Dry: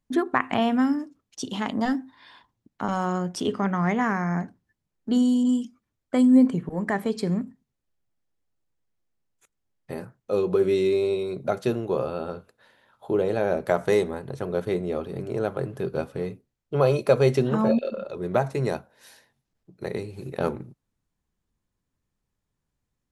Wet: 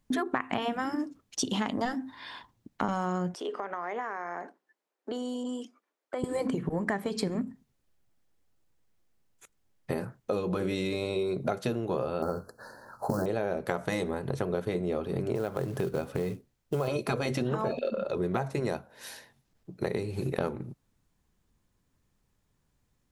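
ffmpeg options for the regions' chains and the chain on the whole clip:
-filter_complex "[0:a]asettb=1/sr,asplit=3[s0][s1][s2];[s0]atrim=end=3.344[s3];[s1]atrim=start=3.34:end=6.24,asetpts=PTS-STARTPTS,afade=t=in:d=0.004:c=qsin,afade=t=out:st=2.896:d=0.004:c=qsin,highpass=f=390:w=0.5412,highpass=f=390:w=1.3066,acompressor=threshold=0.0126:ratio=4:attack=3.2:release=140:knee=1:detection=peak,highshelf=f=2500:g=-10[s4];[s2]atrim=start=6.236[s5];[s3][s4]acrossfade=d=0.004:c1=hsin:c2=qsin[s6];[s6][s5]acrossfade=d=0.004:c1=qsin:c2=hsin,asettb=1/sr,asplit=3[s7][s8][s9];[s7]atrim=end=12.224[s10];[s8]atrim=start=12.22:end=13.26,asetpts=PTS-STARTPTS,afade=t=in:d=0.004:c=qsin,afade=t=out:st=1.036:d=0.004:c=qsin,acontrast=50,acrusher=bits=7:mode=log:mix=0:aa=0.000001,asuperstop=centerf=2700:order=20:qfactor=1.1[s11];[s9]atrim=start=13.256[s12];[s10][s11]acrossfade=d=0.004:c1=hsin:c2=qsin[s13];[s13][s12]acrossfade=d=0.004:c1=qsin:c2=hsin,asettb=1/sr,asplit=3[s14][s15][s16];[s14]atrim=end=15.354[s17];[s15]atrim=start=15.35:end=16.88,asetpts=PTS-STARTPTS,afade=t=in:d=0.004:c=qsin,afade=t=out:st=1.526:d=0.004:c=qsin,acompressor=threshold=0.0251:ratio=1.5:attack=3.2:release=140:knee=1:detection=peak,acrusher=bits=6:mode=log:mix=0:aa=0.000001[s18];[s16]atrim=start=16.876[s19];[s17][s18]acrossfade=d=0.004:c1=hsin:c2=qsin[s20];[s20][s19]acrossfade=d=0.004:c1=qsin:c2=hsin,afftfilt=real='re*lt(hypot(re,im),0.631)':imag='im*lt(hypot(re,im),0.631)':win_size=1024:overlap=0.75,acompressor=threshold=0.02:ratio=6,volume=2.24"

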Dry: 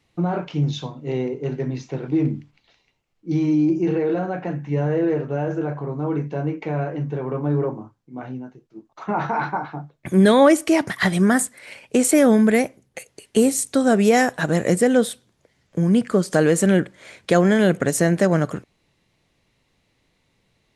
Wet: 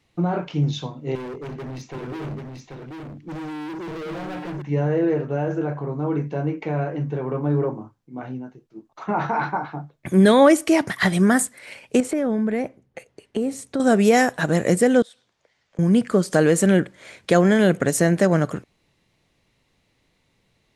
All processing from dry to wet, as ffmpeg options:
-filter_complex "[0:a]asettb=1/sr,asplit=3[s0][s1][s2];[s0]atrim=end=1.154[s3];[s1]atrim=start=1.15:end=4.62,asetpts=PTS-STARTPTS,afade=t=in:d=0.004:c=qsin,afade=t=out:st=3.466:d=0.004:c=qsin,volume=35.5,asoftclip=hard,volume=0.0282,aecho=1:1:786:0.631,atrim=end_sample=153027[s4];[s2]atrim=start=4.616[s5];[s3][s4]acrossfade=d=0.004:c1=hsin:c2=qsin[s6];[s6][s5]acrossfade=d=0.004:c1=qsin:c2=hsin,asettb=1/sr,asplit=3[s7][s8][s9];[s7]atrim=end=12.004[s10];[s8]atrim=start=12:end=13.8,asetpts=PTS-STARTPTS,afade=t=in:d=0.004:c=qsin,afade=t=out:st=1.796:d=0.004:c=qsin,lowpass=f=1500:p=1,acompressor=threshold=0.1:ratio=4:attack=3.2:release=140:knee=1:detection=peak[s11];[s9]atrim=start=13.796[s12];[s10][s11]acrossfade=d=0.004:c1=hsin:c2=qsin[s13];[s13][s12]acrossfade=d=0.004:c1=qsin:c2=hsin,asettb=1/sr,asplit=3[s14][s15][s16];[s14]atrim=end=15.024[s17];[s15]atrim=start=15.02:end=15.79,asetpts=PTS-STARTPTS,afade=t=in:d=0.004:c=qsin,afade=t=out:st=0.766:d=0.004:c=qsin,acompressor=threshold=0.00891:ratio=5:attack=3.2:release=140:knee=1:detection=peak,acrossover=split=520 7300:gain=0.224 1 0.0794[s18][s19][s20];[s18][s19][s20]amix=inputs=3:normalize=0[s21];[s16]atrim=start=15.786[s22];[s17][s21]acrossfade=d=0.004:c1=hsin:c2=qsin[s23];[s23][s22]acrossfade=d=0.004:c1=qsin:c2=hsin"

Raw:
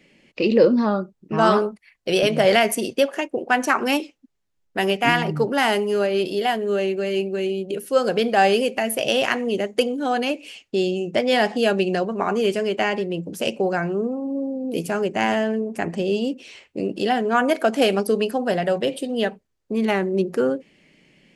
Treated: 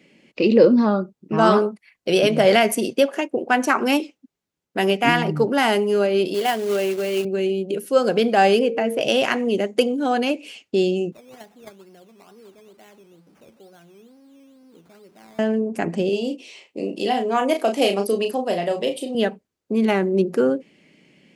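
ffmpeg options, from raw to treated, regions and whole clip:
-filter_complex "[0:a]asettb=1/sr,asplit=3[s0][s1][s2];[s0]atrim=end=6.344[s3];[s1]atrim=start=6.34:end=7.25,asetpts=PTS-STARTPTS,afade=t=in:d=0.004:c=qsin,afade=t=out:st=0.906:d=0.004:c=qsin,highpass=f=300:p=1,acrusher=bits=3:mode=log:mix=0:aa=0.000001[s4];[s2]atrim=start=7.246[s5];[s3][s4]acrossfade=d=0.004:c1=hsin:c2=qsin[s6];[s6][s5]acrossfade=d=0.004:c1=qsin:c2=hsin,asettb=1/sr,asplit=3[s7][s8][s9];[s7]atrim=end=8.594[s10];[s8]atrim=start=8.59:end=9.01,asetpts=PTS-STARTPTS,afade=t=in:d=0.004:c=qsin,afade=t=out:st=0.416:d=0.004:c=qsin,aemphasis=mode=reproduction:type=75kf,aeval=exprs='val(0)+0.0447*sin(2*PI*460*n/s)':c=same[s11];[s9]atrim=start=9.006[s12];[s10][s11]acrossfade=d=0.004:c1=hsin:c2=qsin[s13];[s13][s12]acrossfade=d=0.004:c1=qsin:c2=hsin,asettb=1/sr,asplit=3[s14][s15][s16];[s14]atrim=end=11.124[s17];[s15]atrim=start=11.12:end=15.39,asetpts=PTS-STARTPTS,afade=t=in:d=0.004:c=qsin,afade=t=out:st=4.266:d=0.004:c=qsin,aeval=exprs='val(0)+0.5*0.0501*sgn(val(0))':c=same,agate=range=0.0316:threshold=0.224:ratio=16:release=100:detection=peak,acrusher=samples=12:mix=1:aa=0.000001:lfo=1:lforange=7.2:lforate=2.2[s18];[s16]atrim=start=15.386[s19];[s17][s18]acrossfade=d=0.004:c1=hsin:c2=qsin[s20];[s20][s19]acrossfade=d=0.004:c1=qsin:c2=hsin,asettb=1/sr,asplit=3[s21][s22][s23];[s21]atrim=end=16.094[s24];[s22]atrim=start=16.09:end=19.15,asetpts=PTS-STARTPTS,afade=t=in:d=0.004:c=qsin,afade=t=out:st=3.056:d=0.004:c=qsin,highpass=f=440:p=1,equalizer=f=1500:t=o:w=0.37:g=-11.5,asplit=2[s25][s26];[s26]adelay=35,volume=0.473[s27];[s25][s27]amix=inputs=2:normalize=0,atrim=end_sample=134946[s28];[s23]atrim=start=19.146[s29];[s24][s28]acrossfade=d=0.004:c1=hsin:c2=qsin[s30];[s30][s29]acrossfade=d=0.004:c1=qsin:c2=hsin,highpass=f=150:p=1,equalizer=f=220:w=0.61:g=4.5,bandreject=f=1800:w=24"

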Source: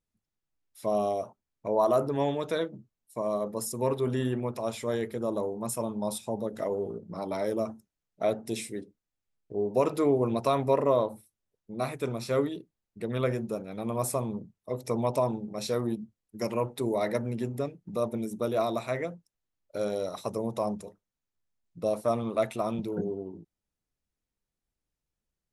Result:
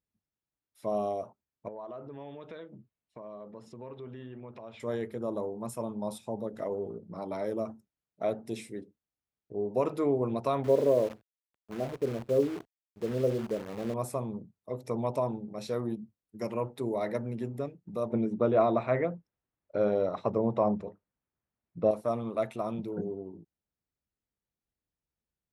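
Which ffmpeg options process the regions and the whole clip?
-filter_complex "[0:a]asettb=1/sr,asplit=3[s0][s1][s2];[s0]atrim=end=1.684[s3];[s1]atrim=start=1.68:end=4.8,asetpts=PTS-STARTPTS,afade=t=in:d=0.004:c=qsin,afade=t=out:st=3.116:d=0.004:c=qsin,lowpass=f=3000:t=q:w=1.6,acompressor=threshold=0.00891:ratio=3:attack=3.2:release=140:knee=1:detection=peak[s4];[s2]atrim=start=4.796[s5];[s3][s4]acrossfade=d=0.004:c1=hsin:c2=qsin[s6];[s6][s5]acrossfade=d=0.004:c1=qsin:c2=hsin,asettb=1/sr,asplit=3[s7][s8][s9];[s7]atrim=end=10.644[s10];[s8]atrim=start=10.64:end=13.94,asetpts=PTS-STARTPTS,afade=t=in:d=0.004:c=qsin,afade=t=out:st=3.296:d=0.004:c=qsin,lowpass=f=500:t=q:w=1.8,acrusher=bits=7:dc=4:mix=0:aa=0.000001[s11];[s9]atrim=start=13.936[s12];[s10][s11]acrossfade=d=0.004:c1=hsin:c2=qsin[s13];[s13][s12]acrossfade=d=0.004:c1=qsin:c2=hsin,asettb=1/sr,asplit=3[s14][s15][s16];[s14]atrim=end=18.104[s17];[s15]atrim=start=18.1:end=21.91,asetpts=PTS-STARTPTS,afade=t=in:d=0.004:c=qsin,afade=t=out:st=3.806:d=0.004:c=qsin,lowpass=2400,acontrast=82[s18];[s16]atrim=start=21.906[s19];[s17][s18]acrossfade=d=0.004:c1=hsin:c2=qsin[s20];[s20][s19]acrossfade=d=0.004:c1=qsin:c2=hsin,highpass=49,highshelf=f=3500:g=-9,volume=0.708"

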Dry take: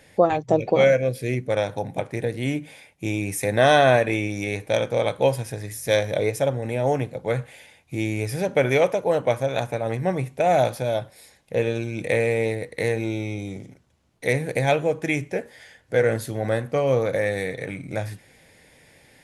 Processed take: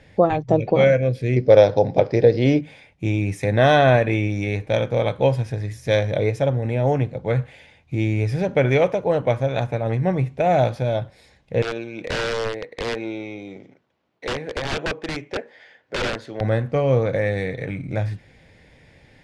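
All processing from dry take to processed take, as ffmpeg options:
-filter_complex "[0:a]asettb=1/sr,asplit=3[s0][s1][s2];[s0]atrim=end=1.364[s3];[s1]atrim=start=1.36:end=2.61,asetpts=PTS-STARTPTS,afade=t=in:d=0.004:c=qsin,afade=t=out:st=1.246:d=0.004:c=qsin,lowpass=f=5000:t=q:w=14,equalizer=f=490:t=o:w=1.4:g=12[s4];[s2]atrim=start=2.606[s5];[s3][s4]acrossfade=d=0.004:c1=hsin:c2=qsin[s6];[s6][s5]acrossfade=d=0.004:c1=qsin:c2=hsin,asettb=1/sr,asplit=3[s7][s8][s9];[s7]atrim=end=11.624[s10];[s8]atrim=start=11.62:end=16.41,asetpts=PTS-STARTPTS,afade=t=in:d=0.004:c=qsin,afade=t=out:st=4.786:d=0.004:c=qsin,highpass=350,aeval=exprs='(mod(8.91*val(0)+1,2)-1)/8.91':c=same,adynamicsmooth=sensitivity=4:basefreq=5400[s11];[s9]atrim=start=16.406[s12];[s10][s11]acrossfade=d=0.004:c1=hsin:c2=qsin[s13];[s13][s12]acrossfade=d=0.004:c1=qsin:c2=hsin,lowpass=4600,lowshelf=f=160:g=11"

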